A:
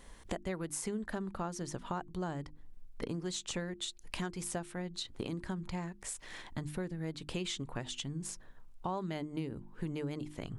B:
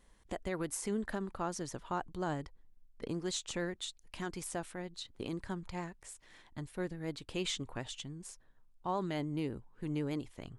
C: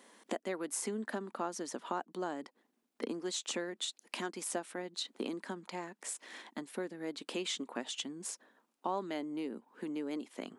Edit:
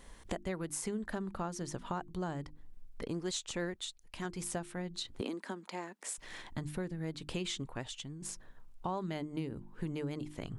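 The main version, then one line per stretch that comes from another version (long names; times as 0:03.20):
A
0:03.03–0:04.25: punch in from B
0:05.21–0:06.18: punch in from C
0:07.67–0:08.22: punch in from B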